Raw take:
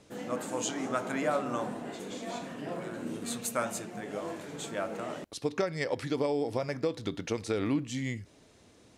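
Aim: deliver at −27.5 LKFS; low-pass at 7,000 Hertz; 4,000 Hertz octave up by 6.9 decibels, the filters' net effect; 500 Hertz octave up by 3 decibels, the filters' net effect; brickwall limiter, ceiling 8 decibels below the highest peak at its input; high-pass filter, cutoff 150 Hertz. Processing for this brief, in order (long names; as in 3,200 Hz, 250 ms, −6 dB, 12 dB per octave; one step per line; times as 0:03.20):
high-pass filter 150 Hz
low-pass filter 7,000 Hz
parametric band 500 Hz +3.5 dB
parametric band 4,000 Hz +9 dB
level +7 dB
brickwall limiter −15 dBFS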